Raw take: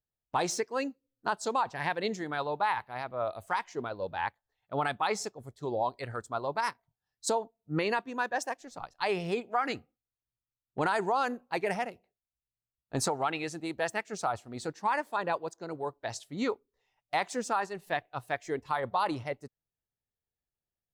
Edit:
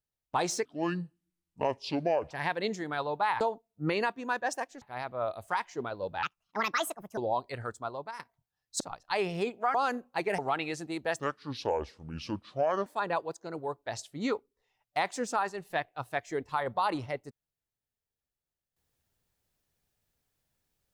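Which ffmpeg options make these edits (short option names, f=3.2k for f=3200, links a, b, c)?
-filter_complex "[0:a]asplit=13[a][b][c][d][e][f][g][h][i][j][k][l][m];[a]atrim=end=0.654[n];[b]atrim=start=0.65:end=1.71,asetpts=PTS-STARTPTS,asetrate=28224,aresample=44100[o];[c]atrim=start=1.706:end=2.812[p];[d]atrim=start=7.298:end=8.712[q];[e]atrim=start=2.808:end=4.224[r];[f]atrim=start=4.22:end=5.67,asetpts=PTS-STARTPTS,asetrate=67473,aresample=44100,atrim=end_sample=41794,asetpts=PTS-STARTPTS[s];[g]atrim=start=5.666:end=6.69,asetpts=PTS-STARTPTS,afade=t=out:st=0.524:d=0.5:silence=0.158489[t];[h]atrim=start=6.69:end=7.302,asetpts=PTS-STARTPTS,afade=t=in:d=0.004:c=hsin:silence=0.158489[u];[i]atrim=start=8.708:end=9.652[v];[j]atrim=start=11.108:end=11.752[w];[k]atrim=start=13.118:end=13.934[x];[l]atrim=start=13.93:end=15.03,asetpts=PTS-STARTPTS,asetrate=29106,aresample=44100[y];[m]atrim=start=15.026[z];[n][o]acrossfade=d=0.004:c1=hsin:c2=hsin[aa];[aa][p]acrossfade=d=0.004:c1=hsin:c2=hsin[ab];[ab][q]acrossfade=d=0.004:c1=hsin:c2=hsin[ac];[ac][r]acrossfade=d=0.004:c1=hsin:c2=hsin[ad];[ad][s]acrossfade=d=0.004:c1=hsin:c2=hsin[ae];[t][u]concat=n=2:v=0:a=1[af];[ae][af]acrossfade=d=0.004:c1=hsin:c2=hsin[ag];[ag][v]acrossfade=d=0.004:c1=hsin:c2=hsin[ah];[ah][w]acrossfade=d=0.004:c1=hsin:c2=hsin[ai];[ai][x]acrossfade=d=0.004:c1=hsin:c2=hsin[aj];[aj][y]acrossfade=d=0.004:c1=hsin:c2=hsin[ak];[ak][z]acrossfade=d=0.004:c1=hsin:c2=hsin"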